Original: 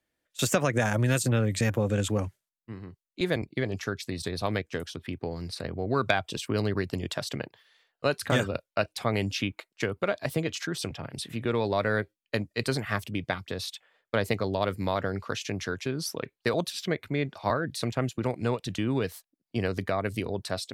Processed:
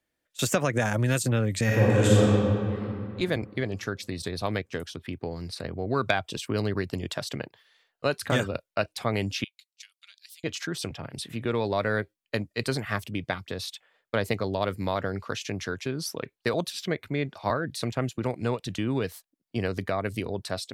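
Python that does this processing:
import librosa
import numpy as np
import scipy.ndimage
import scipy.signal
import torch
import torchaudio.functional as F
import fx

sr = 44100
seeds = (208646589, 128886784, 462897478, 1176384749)

y = fx.reverb_throw(x, sr, start_s=1.64, length_s=1.18, rt60_s=2.5, drr_db=-7.0)
y = fx.ladder_highpass(y, sr, hz=3000.0, resonance_pct=25, at=(9.44, 10.44))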